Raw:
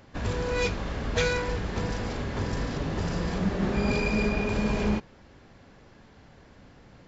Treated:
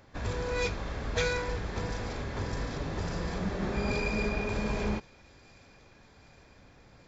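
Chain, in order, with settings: bell 210 Hz -4 dB 1.3 oct; notch 2900 Hz, Q 12; thin delay 0.771 s, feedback 70%, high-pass 3200 Hz, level -19.5 dB; gain -3 dB

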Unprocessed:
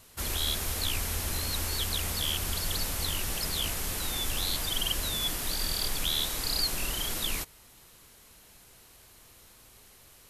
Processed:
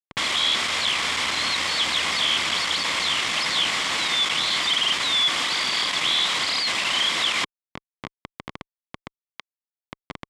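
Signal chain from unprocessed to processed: high shelf 2200 Hz +9 dB; in parallel at -1.5 dB: compressor, threshold -39 dBFS, peak gain reduction 19.5 dB; on the sum: Schmitt trigger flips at -32.5 dBFS; speaker cabinet 200–7000 Hz, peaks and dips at 420 Hz -4 dB, 1100 Hz +8 dB, 2100 Hz +9 dB, 3300 Hz +7 dB, 6200 Hz -5 dB; gain +1.5 dB

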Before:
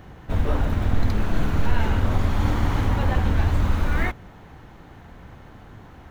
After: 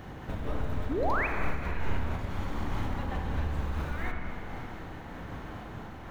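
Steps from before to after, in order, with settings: low shelf 120 Hz -4 dB; compressor 4:1, threshold -36 dBFS, peak gain reduction 17 dB; painted sound rise, 0.89–1.27, 240–2700 Hz -33 dBFS; on a send at -2 dB: reverb RT60 3.4 s, pre-delay 28 ms; on the sum: noise-modulated level, depth 50%; gain +4 dB

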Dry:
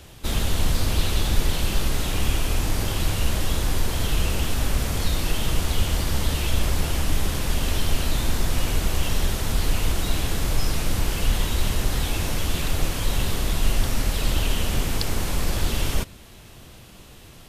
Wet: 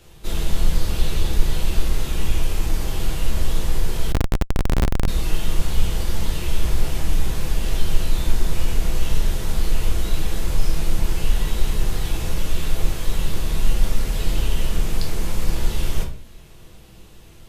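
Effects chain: shoebox room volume 36 m³, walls mixed, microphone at 0.64 m; 4.12–5.08 Schmitt trigger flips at -13 dBFS; gain -6.5 dB

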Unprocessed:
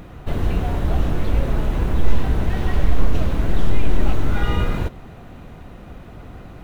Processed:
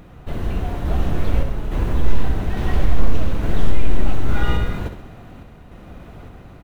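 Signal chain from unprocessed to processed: random-step tremolo; feedback echo 66 ms, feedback 54%, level -9.5 dB

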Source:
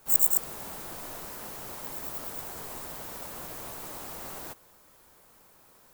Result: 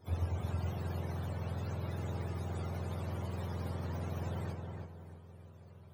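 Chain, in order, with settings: spectrum mirrored in octaves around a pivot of 750 Hz; darkening echo 0.32 s, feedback 38%, low-pass 2500 Hz, level -4 dB

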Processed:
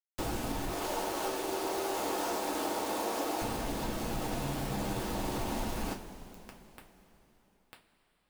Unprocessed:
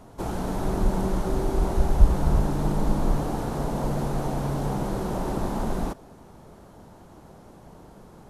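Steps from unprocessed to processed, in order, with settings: 0.7–3.42 HPF 340 Hz 24 dB/oct; limiter -22.5 dBFS, peak gain reduction 8 dB; requantised 6-bit, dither none; compressor 4:1, threshold -34 dBFS, peak gain reduction 7 dB; two-slope reverb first 0.22 s, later 3.7 s, from -19 dB, DRR -0.5 dB

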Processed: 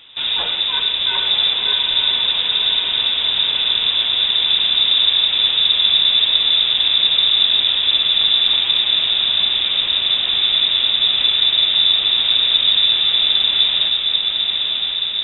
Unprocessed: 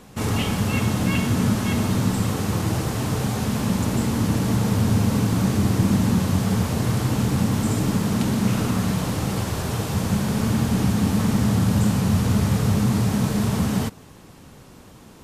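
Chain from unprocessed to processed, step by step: tracing distortion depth 0.1 ms; diffused feedback echo 0.986 s, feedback 70%, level -4 dB; inverted band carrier 3700 Hz; gain +2 dB

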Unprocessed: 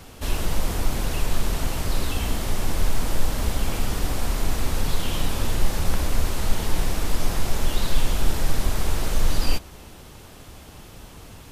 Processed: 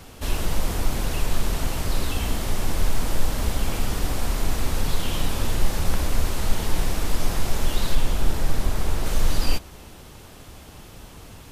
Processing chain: 7.95–9.06 mismatched tape noise reduction decoder only

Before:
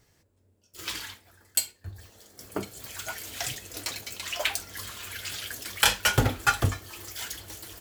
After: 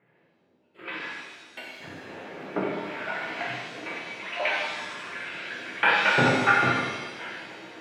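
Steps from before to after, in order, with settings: 1.8–3.42 zero-crossing step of -37 dBFS; elliptic band-pass 160–2400 Hz, stop band 40 dB; shimmer reverb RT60 1.2 s, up +7 st, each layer -8 dB, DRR -5 dB

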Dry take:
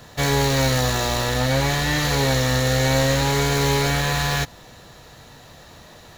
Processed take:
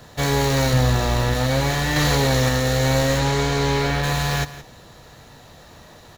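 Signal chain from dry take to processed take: 0.73–1.34 tone controls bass +6 dB, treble -4 dB; 3.18–4.02 LPF 9100 Hz -> 4300 Hz 12 dB/oct; in parallel at -11 dB: decimation with a swept rate 12×, swing 60% 1.5 Hz; on the sum: echo 0.168 s -15.5 dB; 1.96–2.49 fast leveller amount 100%; gain -2 dB

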